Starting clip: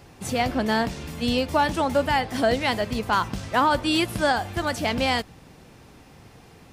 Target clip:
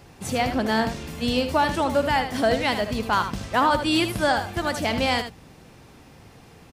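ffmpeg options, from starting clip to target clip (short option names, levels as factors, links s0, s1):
-af "aecho=1:1:77:0.355"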